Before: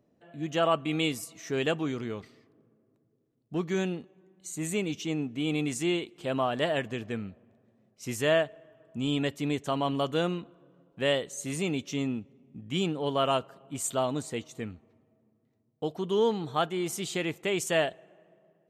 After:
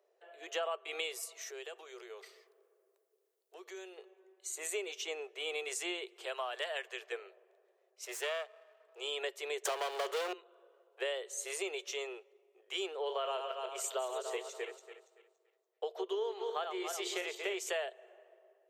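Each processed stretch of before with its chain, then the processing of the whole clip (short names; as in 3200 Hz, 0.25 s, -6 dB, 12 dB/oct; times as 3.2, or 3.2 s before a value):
1.41–3.98 high shelf 5500 Hz +10.5 dB + compressor 12:1, threshold -40 dBFS
6.25–7.12 HPF 1300 Hz 6 dB/oct + hard clip -19.5 dBFS
8.05–9 half-wave gain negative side -12 dB + low shelf 360 Hz -9 dB
9.65–10.33 steep high-pass 160 Hz + sample leveller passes 5
12.95–17.69 regenerating reverse delay 0.142 s, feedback 50%, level -7 dB + bell 9900 Hz -9.5 dB 0.52 oct
whole clip: Chebyshev high-pass 370 Hz, order 8; compressor 6:1, threshold -34 dBFS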